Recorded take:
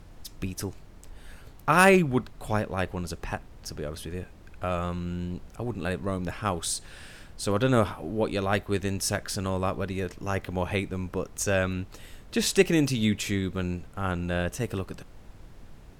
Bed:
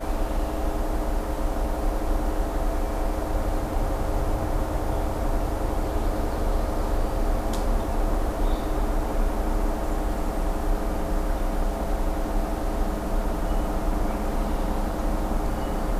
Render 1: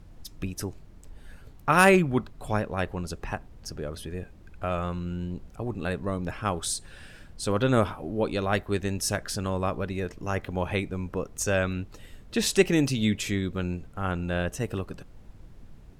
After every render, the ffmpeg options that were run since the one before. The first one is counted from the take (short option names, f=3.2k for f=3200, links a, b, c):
-af "afftdn=nr=6:nf=-49"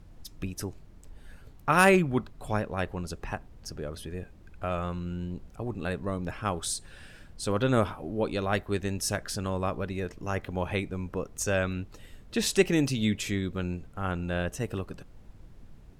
-af "volume=-2dB"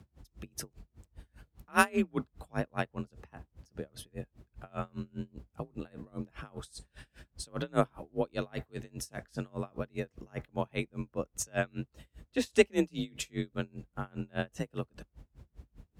-af "afreqshift=38,aeval=exprs='val(0)*pow(10,-33*(0.5-0.5*cos(2*PI*5*n/s))/20)':c=same"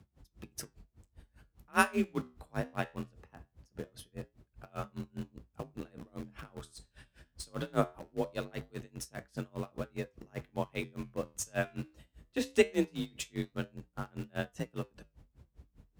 -filter_complex "[0:a]asplit=2[a][b];[b]acrusher=bits=5:mix=0:aa=0.000001,volume=-10dB[c];[a][c]amix=inputs=2:normalize=0,flanger=delay=7:depth=7.5:regen=-75:speed=0.21:shape=triangular"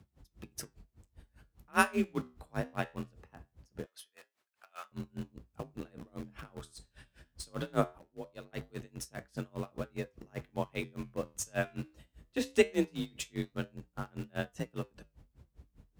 -filter_complex "[0:a]asettb=1/sr,asplit=3[a][b][c];[a]atrim=end=3.864[d];[b]atrim=start=3.86:end=4.92,asetpts=PTS-STARTPTS,afade=t=in:d=0.004:c=qsin,afade=t=out:st=1.056:d=0.004:c=qsin,highpass=1.2k[e];[c]atrim=start=4.916[f];[d][e]acrossfade=d=0.004:c1=hsin:c2=qsin[g];[g][f]acrossfade=d=0.004:c1=qsin:c2=hsin,asplit=3[h][i][j];[h]atrim=end=7.982[k];[i]atrim=start=7.978:end=8.532,asetpts=PTS-STARTPTS,volume=-10.5dB[l];[j]atrim=start=8.528[m];[k][l]acrossfade=d=0.004:c1=hsin:c2=hsin[n];[n][m]acrossfade=d=0.004:c1=hsin:c2=hsin"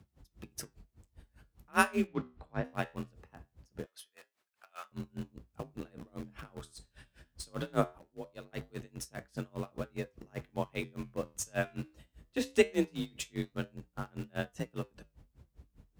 -filter_complex "[0:a]asplit=3[a][b][c];[a]afade=t=out:st=2.06:d=0.02[d];[b]lowpass=3.4k,afade=t=in:st=2.06:d=0.02,afade=t=out:st=2.63:d=0.02[e];[c]afade=t=in:st=2.63:d=0.02[f];[d][e][f]amix=inputs=3:normalize=0"